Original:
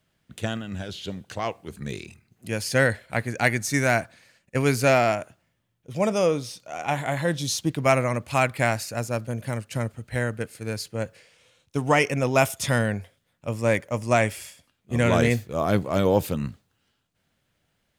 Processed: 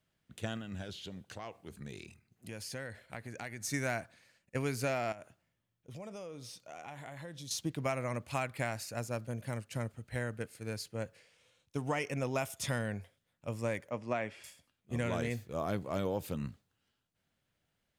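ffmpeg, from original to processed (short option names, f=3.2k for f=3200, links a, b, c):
-filter_complex "[0:a]asettb=1/sr,asplit=3[a][b][c];[a]atrim=end=0.964[d];[b]atrim=start=0.96:end=3.63,asetpts=PTS-STARTPTS,afade=t=in:d=0.004:c=qsin,afade=t=out:st=2.666:d=0.004:c=qsin,acompressor=threshold=-31dB:ratio=4:attack=3.2:release=140:knee=1:detection=peak[e];[c]atrim=start=3.626[f];[d][e]acrossfade=d=0.004:c1=hsin:c2=qsin[g];[g][f]acrossfade=d=0.004:c1=qsin:c2=hsin,asettb=1/sr,asplit=3[h][i][j];[h]atrim=end=5.124[k];[i]atrim=start=5.12:end=7.51,asetpts=PTS-STARTPTS,afade=t=in:d=0.004:c=qsin,afade=t=out:st=2.386:d=0.004:c=qsin,acompressor=threshold=-34dB:ratio=6:attack=3.2:release=140:knee=1:detection=peak[l];[j]atrim=start=7.506[m];[k][l]acrossfade=d=0.004:c1=hsin:c2=qsin[n];[n][m]acrossfade=d=0.004:c1=qsin:c2=hsin,asettb=1/sr,asplit=3[o][p][q];[o]atrim=end=13.904[r];[p]atrim=start=13.9:end=14.44,asetpts=PTS-STARTPTS,afade=t=in:d=0.004:c=qsin,afade=t=out:st=0.536:d=0.004:c=qsin,highpass=160,lowpass=3.3k[s];[q]atrim=start=14.436[t];[r][s]acrossfade=d=0.004:c1=hsin:c2=qsin[u];[u][t]acrossfade=d=0.004:c1=qsin:c2=hsin,acompressor=threshold=-21dB:ratio=6,volume=-9dB"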